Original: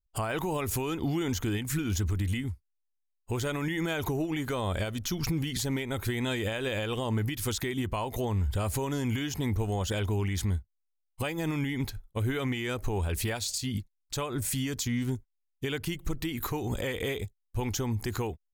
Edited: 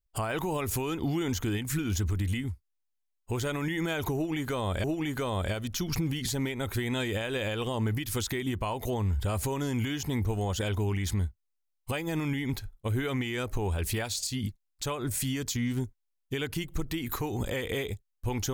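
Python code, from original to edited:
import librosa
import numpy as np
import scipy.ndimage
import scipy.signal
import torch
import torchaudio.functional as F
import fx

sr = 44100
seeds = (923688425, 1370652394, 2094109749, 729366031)

y = fx.edit(x, sr, fx.repeat(start_s=4.15, length_s=0.69, count=2), tone=tone)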